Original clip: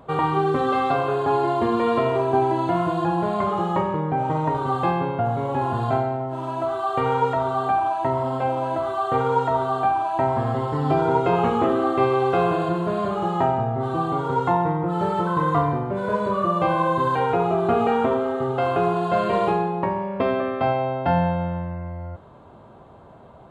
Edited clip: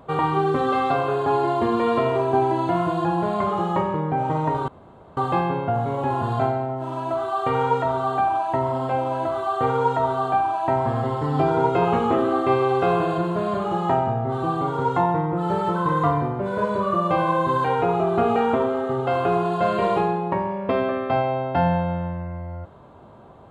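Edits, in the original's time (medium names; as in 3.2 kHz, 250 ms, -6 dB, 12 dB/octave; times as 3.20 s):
4.68 s: insert room tone 0.49 s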